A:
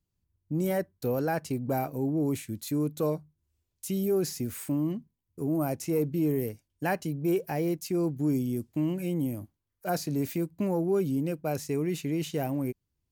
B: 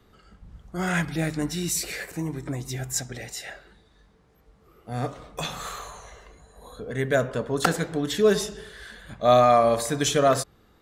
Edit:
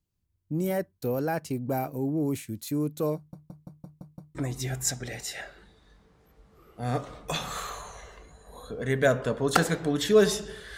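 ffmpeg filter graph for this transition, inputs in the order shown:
-filter_complex "[0:a]apad=whole_dur=10.77,atrim=end=10.77,asplit=7[a][b][c][d][e][f][g];[a]atrim=end=3.332[h];[b]atrim=start=3.158:end=3.332[i];[c]atrim=start=3.158:end=3.332[j];[d]atrim=start=3.158:end=3.332[k];[e]atrim=start=3.158:end=3.332[l];[f]atrim=start=3.158:end=3.332[m];[g]atrim=start=3.158:end=3.332[n];[1:a]atrim=start=2.438:end=8.86[o];[h][i]acrossfade=d=0.004:c1=hsin:c2=hsin[p];[p][j]acrossfade=d=0.004:c1=hsin:c2=hsin[q];[q][k]acrossfade=d=0.004:c1=hsin:c2=hsin[r];[r][l]acrossfade=d=0.004:c1=hsin:c2=hsin[s];[s][m]acrossfade=d=0.004:c1=hsin:c2=hsin[t];[t][n]acrossfade=d=0.004:c1=hsin:c2=hsin[u];[u][o]acrossfade=d=0.004:c1=hsin:c2=hsin"

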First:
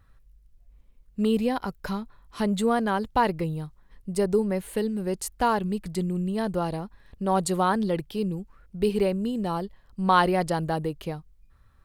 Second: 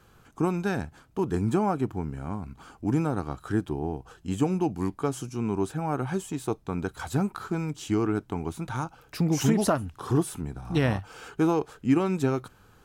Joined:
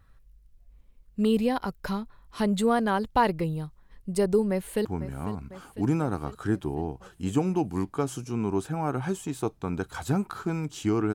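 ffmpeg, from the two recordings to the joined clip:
-filter_complex "[0:a]apad=whole_dur=11.14,atrim=end=11.14,atrim=end=4.852[a];[1:a]atrim=start=1.898:end=8.19[b];[a][b]acrossfade=d=0.004:c1=hsin:c2=hsin,asplit=2[c][d];[d]afade=t=in:st=4.5:d=0.01,afade=t=out:st=4.85:d=0.01,aecho=0:1:500|1000|1500|2000|2500|3000|3500|4000|4500:0.199526|0.139668|0.0977679|0.0684375|0.0479062|0.0335344|0.0234741|0.0164318|0.0115023[e];[c][e]amix=inputs=2:normalize=0"

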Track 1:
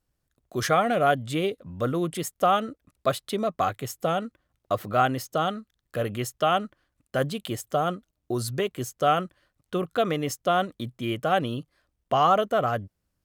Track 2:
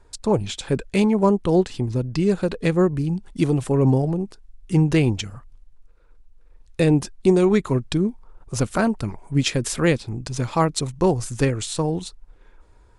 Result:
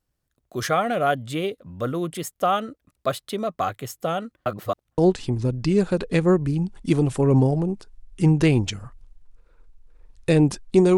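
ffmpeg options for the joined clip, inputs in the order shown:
-filter_complex "[0:a]apad=whole_dur=10.97,atrim=end=10.97,asplit=2[a][b];[a]atrim=end=4.462[c];[b]atrim=start=4.458:end=4.982,asetpts=PTS-STARTPTS,areverse[d];[1:a]atrim=start=1.488:end=7.48[e];[c][d]acrossfade=d=0.004:c1=hsin:c2=hsin[f];[f][e]acrossfade=d=0.004:c1=hsin:c2=hsin"

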